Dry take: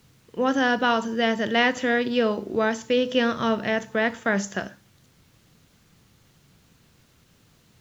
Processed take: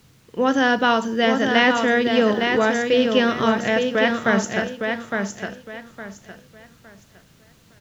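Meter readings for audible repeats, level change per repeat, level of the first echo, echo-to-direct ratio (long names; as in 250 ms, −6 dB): 3, −11.5 dB, −5.0 dB, −4.5 dB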